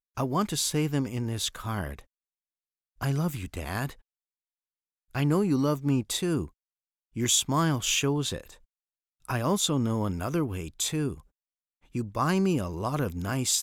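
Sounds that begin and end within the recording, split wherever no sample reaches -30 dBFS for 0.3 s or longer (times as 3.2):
3.01–3.9
5.15–6.45
7.17–8.38
9.3–11.13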